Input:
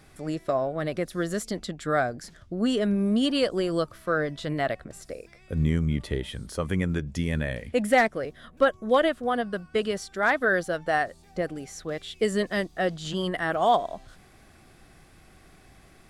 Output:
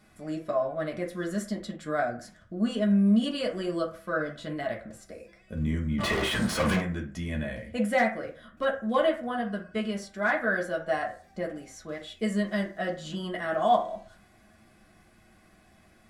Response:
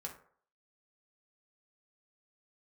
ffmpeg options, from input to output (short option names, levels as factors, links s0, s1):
-filter_complex "[0:a]asplit=3[s0][s1][s2];[s0]afade=t=out:st=5.98:d=0.02[s3];[s1]asplit=2[s4][s5];[s5]highpass=f=720:p=1,volume=100,asoftclip=type=tanh:threshold=0.211[s6];[s4][s6]amix=inputs=2:normalize=0,lowpass=f=3200:p=1,volume=0.501,afade=t=in:st=5.98:d=0.02,afade=t=out:st=6.79:d=0.02[s7];[s2]afade=t=in:st=6.79:d=0.02[s8];[s3][s7][s8]amix=inputs=3:normalize=0[s9];[1:a]atrim=start_sample=2205,asetrate=57330,aresample=44100[s10];[s9][s10]afir=irnorm=-1:irlink=0"